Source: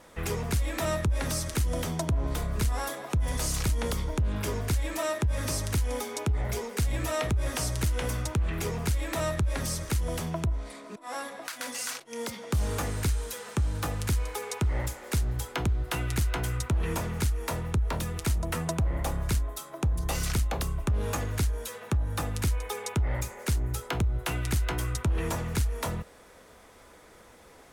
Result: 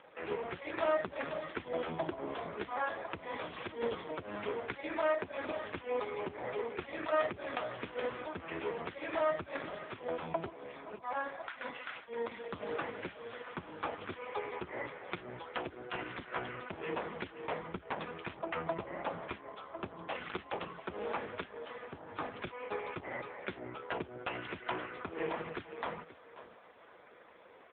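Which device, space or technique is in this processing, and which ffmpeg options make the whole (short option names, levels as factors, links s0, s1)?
satellite phone: -af "highpass=340,lowpass=3400,aecho=1:1:533:0.188,volume=1.19" -ar 8000 -c:a libopencore_amrnb -b:a 4750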